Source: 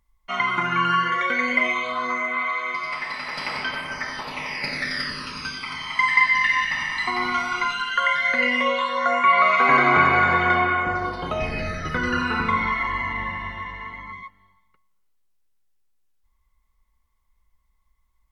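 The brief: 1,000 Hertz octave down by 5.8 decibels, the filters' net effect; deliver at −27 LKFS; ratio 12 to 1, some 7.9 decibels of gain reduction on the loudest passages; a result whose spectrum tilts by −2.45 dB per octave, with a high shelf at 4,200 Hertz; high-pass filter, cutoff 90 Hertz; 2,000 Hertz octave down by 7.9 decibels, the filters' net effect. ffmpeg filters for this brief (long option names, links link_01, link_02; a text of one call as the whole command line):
ffmpeg -i in.wav -af "highpass=90,equalizer=frequency=1000:width_type=o:gain=-4.5,equalizer=frequency=2000:width_type=o:gain=-7,highshelf=frequency=4200:gain=-5.5,acompressor=threshold=-26dB:ratio=12,volume=4dB" out.wav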